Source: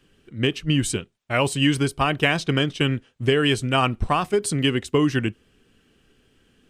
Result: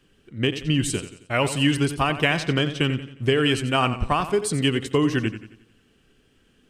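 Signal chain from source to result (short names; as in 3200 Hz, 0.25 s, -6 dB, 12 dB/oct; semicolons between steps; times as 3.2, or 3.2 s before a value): warbling echo 89 ms, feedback 44%, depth 56 cents, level -12 dB; gain -1 dB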